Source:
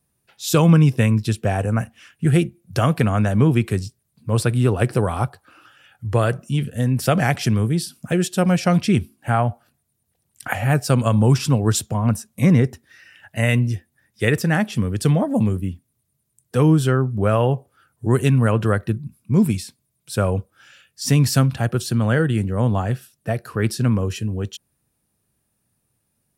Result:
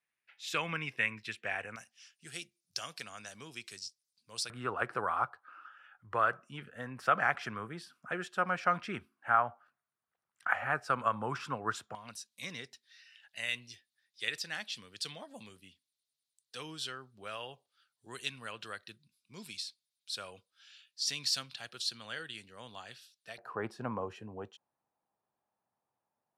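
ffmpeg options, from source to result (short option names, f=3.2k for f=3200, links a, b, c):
-af "asetnsamples=n=441:p=0,asendcmd='1.76 bandpass f 5200;4.5 bandpass f 1300;11.95 bandpass f 4100;23.38 bandpass f 860',bandpass=f=2.1k:t=q:w=2.8:csg=0"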